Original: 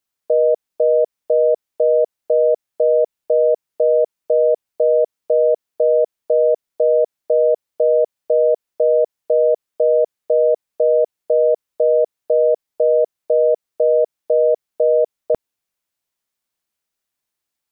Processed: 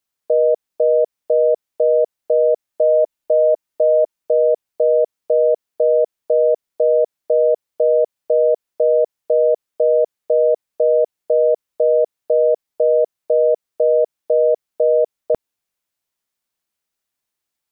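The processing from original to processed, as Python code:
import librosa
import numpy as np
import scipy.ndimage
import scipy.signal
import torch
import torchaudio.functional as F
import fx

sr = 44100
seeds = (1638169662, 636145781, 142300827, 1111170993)

y = fx.comb(x, sr, ms=3.3, depth=0.37, at=(2.68, 4.16))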